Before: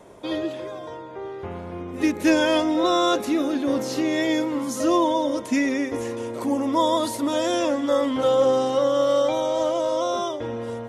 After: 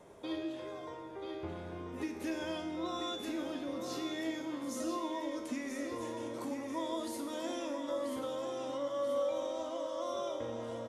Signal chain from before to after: compressor 4:1, threshold -29 dBFS, peak gain reduction 12.5 dB; resonator 81 Hz, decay 0.91 s, harmonics all, mix 80%; feedback echo 0.986 s, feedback 42%, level -7 dB; gain +2 dB

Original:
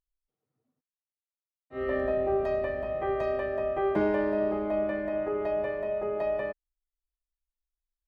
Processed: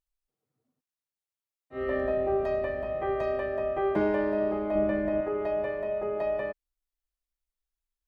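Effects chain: 4.75–5.21 low shelf 340 Hz +9 dB

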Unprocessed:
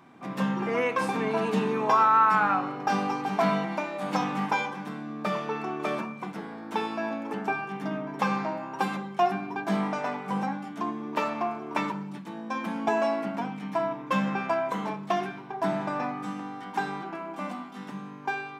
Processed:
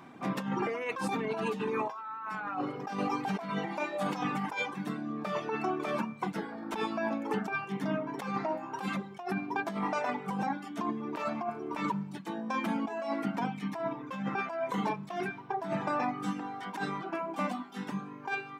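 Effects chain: reverb removal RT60 1 s; negative-ratio compressor -33 dBFS, ratio -1

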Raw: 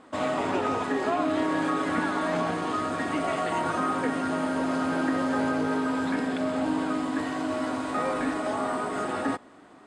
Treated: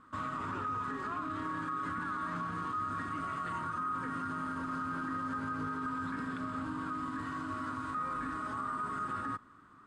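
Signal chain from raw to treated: EQ curve 110 Hz 0 dB, 750 Hz -24 dB, 1200 Hz +2 dB, 2100 Hz -14 dB; limiter -30 dBFS, peak gain reduction 9 dB; gain +1 dB

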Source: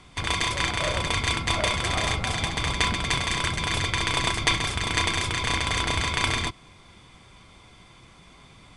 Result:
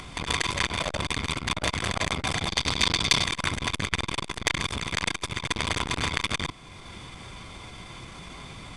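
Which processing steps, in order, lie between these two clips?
2.48–3.25 bell 4600 Hz +10.5 dB 1.1 oct; in parallel at -1 dB: upward compressor, threshold -29 dBFS; on the sum: core saturation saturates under 2800 Hz; gain -2.5 dB

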